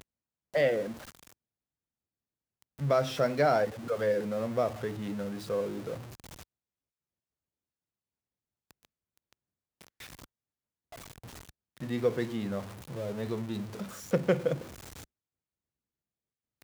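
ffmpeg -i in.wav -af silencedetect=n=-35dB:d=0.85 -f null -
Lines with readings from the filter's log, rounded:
silence_start: 0.92
silence_end: 2.81 | silence_duration: 1.89
silence_start: 5.98
silence_end: 11.82 | silence_duration: 5.84
silence_start: 14.62
silence_end: 16.63 | silence_duration: 2.01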